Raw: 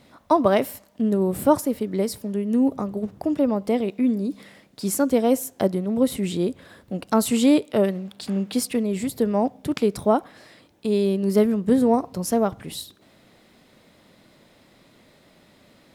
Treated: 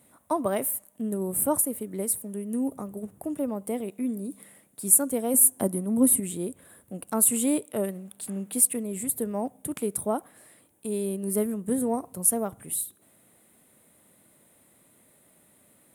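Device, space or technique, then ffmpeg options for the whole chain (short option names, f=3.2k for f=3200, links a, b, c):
budget condenser microphone: -filter_complex "[0:a]highpass=62,highshelf=f=7k:t=q:w=3:g=13.5,asettb=1/sr,asplit=3[a][b][c];[a]atrim=end=5.344[d];[b]atrim=start=5.34:end=6.2,asetpts=PTS-STARTPTS,afade=t=in:d=0.004:c=qsin,afade=t=out:st=0.856:d=0.004:c=qsin,equalizer=f=100:t=o:w=0.67:g=5,equalizer=f=250:t=o:w=0.67:g=9,equalizer=f=1k:t=o:w=0.67:g=5,equalizer=f=10k:t=o:w=0.67:g=6[e];[c]atrim=start=6.196[f];[d][e]acrossfade=d=0.004:c1=hsin:c2=qsin[g];[g][f]acrossfade=d=0.004:c1=qsin:c2=hsin,volume=-8.5dB"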